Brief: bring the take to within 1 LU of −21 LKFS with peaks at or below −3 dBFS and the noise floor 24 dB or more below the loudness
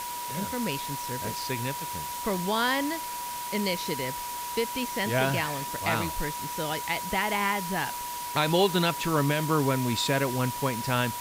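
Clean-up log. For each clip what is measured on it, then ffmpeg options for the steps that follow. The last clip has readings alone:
interfering tone 970 Hz; level of the tone −34 dBFS; background noise floor −35 dBFS; target noise floor −52 dBFS; integrated loudness −28.0 LKFS; sample peak −11.0 dBFS; target loudness −21.0 LKFS
→ -af "bandreject=frequency=970:width=30"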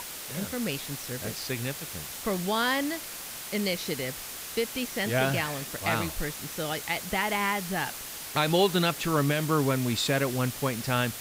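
interfering tone none found; background noise floor −40 dBFS; target noise floor −53 dBFS
→ -af "afftdn=noise_reduction=13:noise_floor=-40"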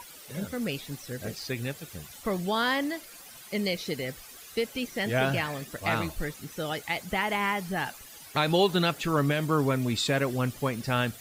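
background noise floor −48 dBFS; target noise floor −54 dBFS
→ -af "afftdn=noise_reduction=6:noise_floor=-48"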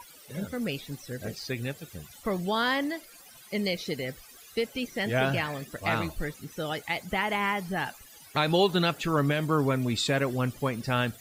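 background noise floor −52 dBFS; target noise floor −54 dBFS
→ -af "afftdn=noise_reduction=6:noise_floor=-52"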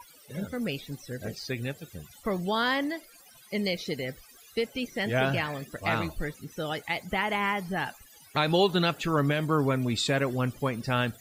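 background noise floor −55 dBFS; integrated loudness −29.5 LKFS; sample peak −12.0 dBFS; target loudness −21.0 LKFS
→ -af "volume=8.5dB"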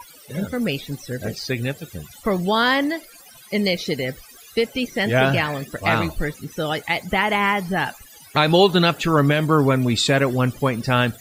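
integrated loudness −21.0 LKFS; sample peak −3.5 dBFS; background noise floor −46 dBFS

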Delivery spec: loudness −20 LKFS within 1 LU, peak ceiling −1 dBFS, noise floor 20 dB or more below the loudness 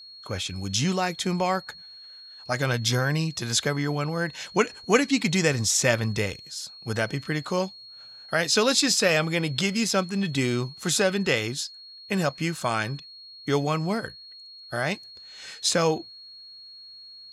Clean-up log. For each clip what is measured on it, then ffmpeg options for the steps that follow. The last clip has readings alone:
interfering tone 4,300 Hz; level of the tone −43 dBFS; integrated loudness −25.5 LKFS; sample peak −7.0 dBFS; target loudness −20.0 LKFS
→ -af "bandreject=frequency=4300:width=30"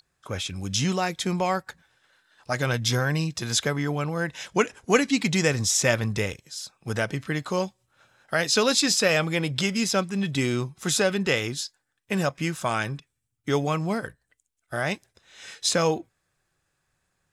interfering tone none found; integrated loudness −25.5 LKFS; sample peak −7.0 dBFS; target loudness −20.0 LKFS
→ -af "volume=5.5dB"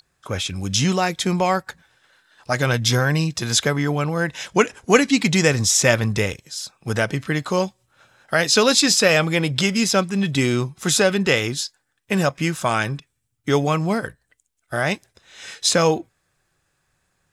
integrated loudness −20.0 LKFS; sample peak −1.5 dBFS; background noise floor −72 dBFS

